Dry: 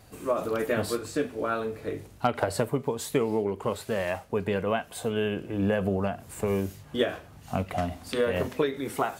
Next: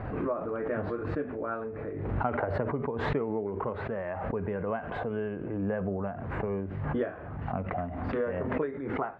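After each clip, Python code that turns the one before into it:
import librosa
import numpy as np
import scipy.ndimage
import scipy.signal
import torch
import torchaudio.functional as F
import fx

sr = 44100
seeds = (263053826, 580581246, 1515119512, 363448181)

y = scipy.signal.sosfilt(scipy.signal.butter(4, 1800.0, 'lowpass', fs=sr, output='sos'), x)
y = fx.pre_swell(y, sr, db_per_s=34.0)
y = F.gain(torch.from_numpy(y), -5.5).numpy()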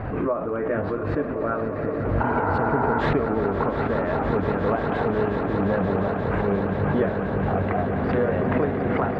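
y = fx.quant_float(x, sr, bits=8)
y = fx.echo_swell(y, sr, ms=177, loudest=8, wet_db=-11.5)
y = fx.spec_repair(y, sr, seeds[0], start_s=2.26, length_s=0.73, low_hz=510.0, high_hz=2200.0, source='before')
y = F.gain(torch.from_numpy(y), 6.5).numpy()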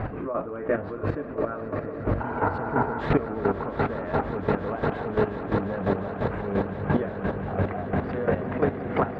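y = fx.chopper(x, sr, hz=2.9, depth_pct=65, duty_pct=20)
y = F.gain(torch.from_numpy(y), 1.5).numpy()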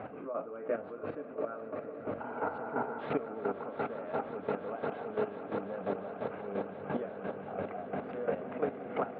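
y = fx.cabinet(x, sr, low_hz=290.0, low_slope=12, high_hz=3200.0, hz=(350.0, 1000.0, 1800.0), db=(-6, -7, -10))
y = F.gain(torch.from_numpy(y), -6.0).numpy()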